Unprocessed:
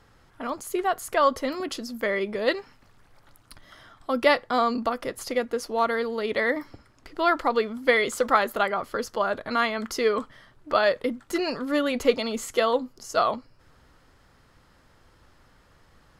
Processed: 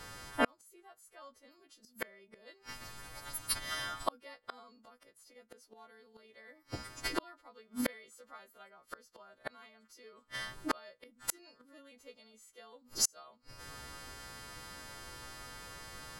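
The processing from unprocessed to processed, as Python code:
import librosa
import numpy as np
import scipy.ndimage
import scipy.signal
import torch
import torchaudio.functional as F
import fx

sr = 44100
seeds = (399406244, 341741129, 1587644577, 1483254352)

y = fx.freq_snap(x, sr, grid_st=2)
y = fx.gate_flip(y, sr, shuts_db=-24.0, range_db=-41)
y = y * librosa.db_to_amplitude(8.0)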